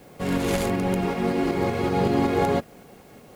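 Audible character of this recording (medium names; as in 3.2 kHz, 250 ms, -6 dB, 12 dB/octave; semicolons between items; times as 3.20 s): tremolo saw up 5.3 Hz, depth 35%; a quantiser's noise floor 10-bit, dither triangular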